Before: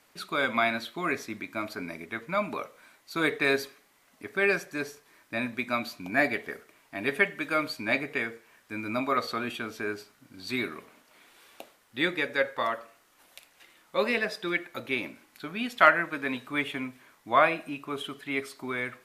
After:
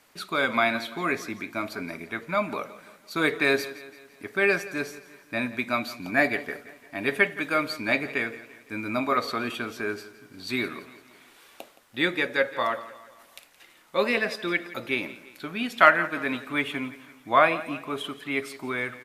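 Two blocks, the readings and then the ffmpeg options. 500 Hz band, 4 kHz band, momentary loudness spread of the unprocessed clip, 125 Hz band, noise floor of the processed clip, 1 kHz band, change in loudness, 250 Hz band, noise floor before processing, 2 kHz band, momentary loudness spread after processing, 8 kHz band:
+2.5 dB, +2.5 dB, 13 LU, +2.5 dB, -56 dBFS, +2.5 dB, +2.5 dB, +2.5 dB, -64 dBFS, +2.5 dB, 15 LU, +2.5 dB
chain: -af "aecho=1:1:170|340|510|680:0.141|0.0692|0.0339|0.0166,volume=2.5dB"

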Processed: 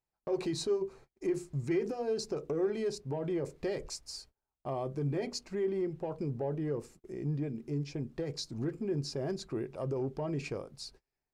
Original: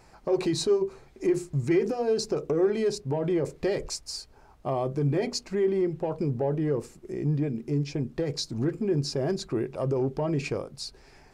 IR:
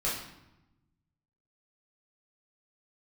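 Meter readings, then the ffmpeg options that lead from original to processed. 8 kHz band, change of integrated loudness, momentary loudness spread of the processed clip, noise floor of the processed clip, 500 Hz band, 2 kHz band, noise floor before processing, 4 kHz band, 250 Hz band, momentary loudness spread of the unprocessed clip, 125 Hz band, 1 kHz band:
-7.5 dB, -7.5 dB, 8 LU, under -85 dBFS, -7.5 dB, -7.5 dB, -55 dBFS, -7.5 dB, -7.5 dB, 8 LU, -7.5 dB, -7.5 dB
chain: -af "agate=range=-30dB:threshold=-46dB:ratio=16:detection=peak,volume=-7.5dB"

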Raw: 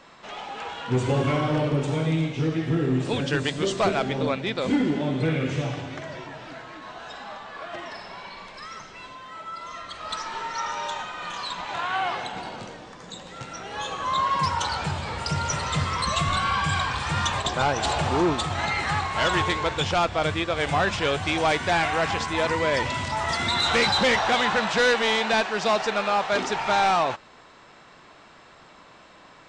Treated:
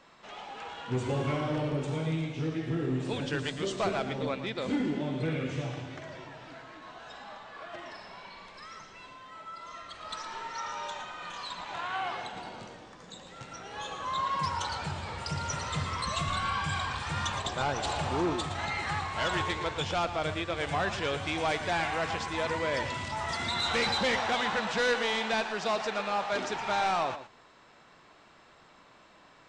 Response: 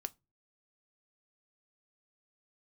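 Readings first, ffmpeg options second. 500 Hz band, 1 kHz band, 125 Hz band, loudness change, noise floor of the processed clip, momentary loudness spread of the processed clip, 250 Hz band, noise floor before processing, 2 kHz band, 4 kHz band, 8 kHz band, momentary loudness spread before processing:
-7.0 dB, -7.0 dB, -7.5 dB, -7.0 dB, -58 dBFS, 17 LU, -7.0 dB, -51 dBFS, -7.0 dB, -7.0 dB, -7.0 dB, 17 LU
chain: -filter_complex "[0:a]asplit=2[a][b];[1:a]atrim=start_sample=2205,adelay=114[c];[b][c]afir=irnorm=-1:irlink=0,volume=-8.5dB[d];[a][d]amix=inputs=2:normalize=0,volume=-7.5dB"

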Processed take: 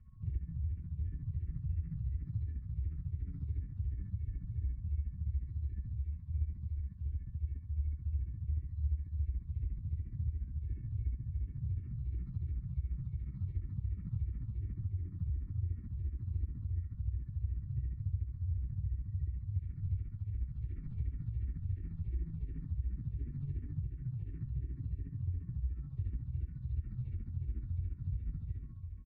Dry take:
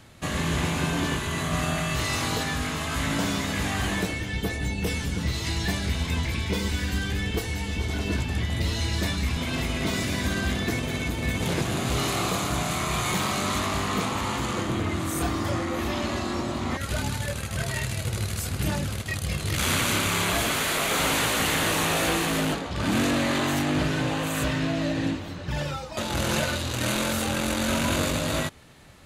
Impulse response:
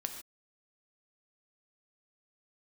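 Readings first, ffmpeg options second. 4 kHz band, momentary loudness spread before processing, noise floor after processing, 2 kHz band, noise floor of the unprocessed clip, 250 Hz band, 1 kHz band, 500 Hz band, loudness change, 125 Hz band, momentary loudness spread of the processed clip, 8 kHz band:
under -40 dB, 6 LU, -48 dBFS, under -40 dB, -34 dBFS, -23.5 dB, under -40 dB, under -35 dB, -13.5 dB, -7.0 dB, 3 LU, under -40 dB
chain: -filter_complex "[0:a]aeval=exprs='val(0)+0.02*sin(2*PI*1100*n/s)':c=same,asplit=2[a][b];[1:a]atrim=start_sample=2205,adelay=78[c];[b][c]afir=irnorm=-1:irlink=0,volume=0dB[d];[a][d]amix=inputs=2:normalize=0,aresample=11025,aresample=44100,tremolo=f=14:d=0.7,firequalizer=gain_entry='entry(110,0);entry(430,-30);entry(2000,-11);entry(3100,-25)':delay=0.05:min_phase=1,acrossover=split=130|450|1900[e][f][g][h];[e]acompressor=threshold=-31dB:ratio=4[i];[f]acompressor=threshold=-48dB:ratio=4[j];[g]acompressor=threshold=-59dB:ratio=4[k];[h]acompressor=threshold=-55dB:ratio=4[l];[i][j][k][l]amix=inputs=4:normalize=0,aecho=1:1:2.2:0.6,acompressor=threshold=-37dB:ratio=8,afwtdn=0.00398,tiltshelf=f=1.2k:g=6,aecho=1:1:1132:0.355,asplit=2[m][n];[n]afreqshift=-2.8[o];[m][o]amix=inputs=2:normalize=1"

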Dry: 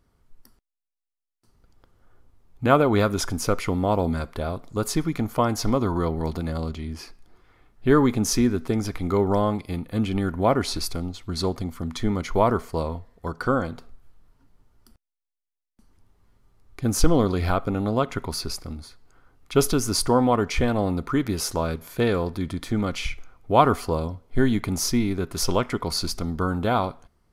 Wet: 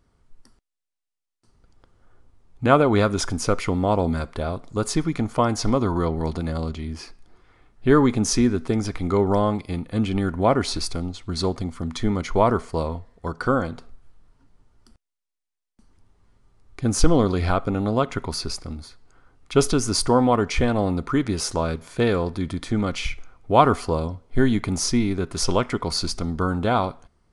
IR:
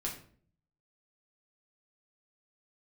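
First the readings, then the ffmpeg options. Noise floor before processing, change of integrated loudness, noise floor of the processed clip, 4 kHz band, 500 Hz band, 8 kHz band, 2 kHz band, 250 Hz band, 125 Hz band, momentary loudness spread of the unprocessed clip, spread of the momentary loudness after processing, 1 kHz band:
-85 dBFS, +1.5 dB, -83 dBFS, +1.5 dB, +1.5 dB, +1.0 dB, +1.5 dB, +1.5 dB, +1.5 dB, 11 LU, 11 LU, +1.5 dB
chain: -af "aresample=22050,aresample=44100,volume=1.5dB"

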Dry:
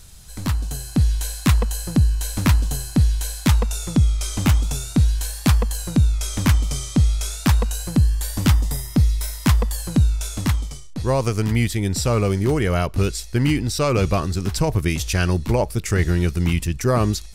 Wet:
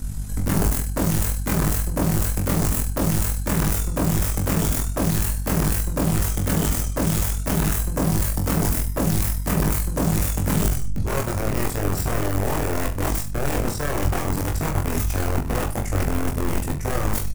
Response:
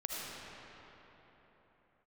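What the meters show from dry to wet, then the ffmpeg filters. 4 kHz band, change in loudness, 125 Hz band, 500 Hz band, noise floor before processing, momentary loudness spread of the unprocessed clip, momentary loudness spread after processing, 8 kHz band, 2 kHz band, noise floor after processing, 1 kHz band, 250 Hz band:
-5.0 dB, -2.5 dB, -4.0 dB, -2.5 dB, -35 dBFS, 3 LU, 4 LU, +1.0 dB, -1.5 dB, -27 dBFS, +0.5 dB, -2.0 dB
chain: -af "areverse,acompressor=threshold=-27dB:ratio=10,areverse,aeval=exprs='(mod(20*val(0)+1,2)-1)/20':c=same,lowshelf=f=150:g=5,aeval=exprs='val(0)+0.0112*(sin(2*PI*50*n/s)+sin(2*PI*2*50*n/s)/2+sin(2*PI*3*50*n/s)/3+sin(2*PI*4*50*n/s)/4+sin(2*PI*5*50*n/s)/5)':c=same,tremolo=f=40:d=0.621,equalizer=f=3.8k:w=0.93:g=-11.5,aecho=1:1:20|42|66.2|92.82|122.1:0.631|0.398|0.251|0.158|0.1,volume=8.5dB"

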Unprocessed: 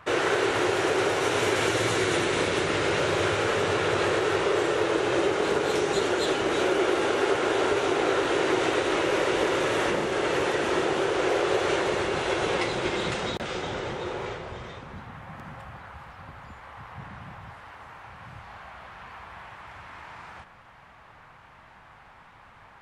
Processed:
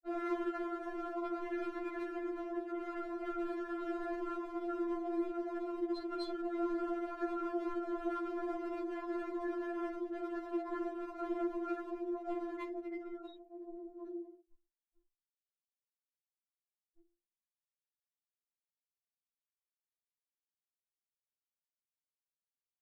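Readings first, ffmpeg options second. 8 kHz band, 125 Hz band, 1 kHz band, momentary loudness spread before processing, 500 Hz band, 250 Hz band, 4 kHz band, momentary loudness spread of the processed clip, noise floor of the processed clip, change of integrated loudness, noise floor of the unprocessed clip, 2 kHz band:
under -35 dB, under -35 dB, -15.5 dB, 20 LU, -16.0 dB, -7.5 dB, -29.0 dB, 7 LU, under -85 dBFS, -14.5 dB, -52 dBFS, -24.0 dB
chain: -filter_complex "[0:a]afftfilt=real='re*gte(hypot(re,im),0.126)':imag='im*gte(hypot(re,im),0.126)':win_size=1024:overlap=0.75,equalizer=f=76:t=o:w=0.32:g=3.5,bandreject=f=50:t=h:w=6,bandreject=f=100:t=h:w=6,bandreject=f=150:t=h:w=6,bandreject=f=200:t=h:w=6,bandreject=f=250:t=h:w=6,bandreject=f=300:t=h:w=6,bandreject=f=350:t=h:w=6,bandreject=f=400:t=h:w=6,asplit=2[a][b];[b]acompressor=threshold=-36dB:ratio=4,volume=-1dB[c];[a][c]amix=inputs=2:normalize=0,asplit=2[d][e];[e]adelay=47,volume=-10dB[f];[d][f]amix=inputs=2:normalize=0,aeval=exprs='clip(val(0),-1,0.0631)':c=same,afftfilt=real='hypot(re,im)*cos(2*PI*random(0))':imag='hypot(re,im)*sin(2*PI*random(1))':win_size=512:overlap=0.75,afftfilt=real='re*4*eq(mod(b,16),0)':imag='im*4*eq(mod(b,16),0)':win_size=2048:overlap=0.75,volume=-5dB"

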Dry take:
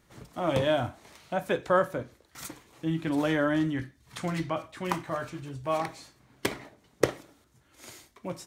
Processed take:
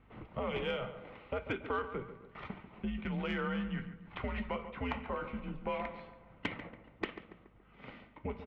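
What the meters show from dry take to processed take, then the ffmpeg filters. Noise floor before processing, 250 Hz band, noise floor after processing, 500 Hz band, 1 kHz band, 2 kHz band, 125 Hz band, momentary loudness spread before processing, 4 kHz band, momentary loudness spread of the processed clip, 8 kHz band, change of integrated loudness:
-65 dBFS, -8.5 dB, -61 dBFS, -10.0 dB, -8.5 dB, -6.5 dB, -8.0 dB, 18 LU, -7.5 dB, 16 LU, under -25 dB, -9.0 dB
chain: -filter_complex "[0:a]lowshelf=f=110:g=11.5,bandreject=f=1.8k:w=6.7,highpass=f=190:t=q:w=0.5412,highpass=f=190:t=q:w=1.307,lowpass=f=2.9k:t=q:w=0.5176,lowpass=f=2.9k:t=q:w=0.7071,lowpass=f=2.9k:t=q:w=1.932,afreqshift=-110,acrossover=split=1700[a][b];[a]acompressor=threshold=-35dB:ratio=10[c];[c][b]amix=inputs=2:normalize=0,asoftclip=type=tanh:threshold=-23.5dB,asplit=2[d][e];[e]adelay=141,lowpass=f=2k:p=1,volume=-11dB,asplit=2[f][g];[g]adelay=141,lowpass=f=2k:p=1,volume=0.5,asplit=2[h][i];[i]adelay=141,lowpass=f=2k:p=1,volume=0.5,asplit=2[j][k];[k]adelay=141,lowpass=f=2k:p=1,volume=0.5,asplit=2[l][m];[m]adelay=141,lowpass=f=2k:p=1,volume=0.5[n];[f][h][j][l][n]amix=inputs=5:normalize=0[o];[d][o]amix=inputs=2:normalize=0,aeval=exprs='val(0)+0.000447*(sin(2*PI*50*n/s)+sin(2*PI*2*50*n/s)/2+sin(2*PI*3*50*n/s)/3+sin(2*PI*4*50*n/s)/4+sin(2*PI*5*50*n/s)/5)':c=same,volume=1dB"

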